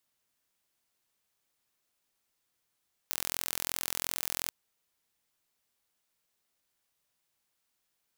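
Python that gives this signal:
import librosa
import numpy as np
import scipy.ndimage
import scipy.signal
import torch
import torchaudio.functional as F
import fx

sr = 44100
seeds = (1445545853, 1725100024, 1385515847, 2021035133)

y = 10.0 ** (-5.5 / 20.0) * (np.mod(np.arange(round(1.39 * sr)), round(sr / 42.8)) == 0)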